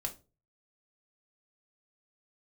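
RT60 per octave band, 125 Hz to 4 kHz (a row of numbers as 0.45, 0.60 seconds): 0.55, 0.40, 0.40, 0.25, 0.20, 0.25 seconds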